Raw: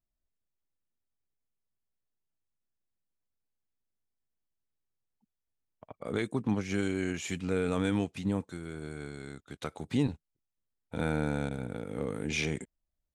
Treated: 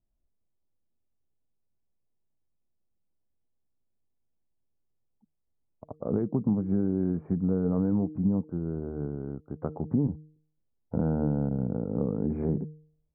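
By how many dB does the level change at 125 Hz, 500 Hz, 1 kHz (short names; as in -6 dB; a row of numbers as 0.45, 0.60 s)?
+6.0, +2.0, -3.0 dB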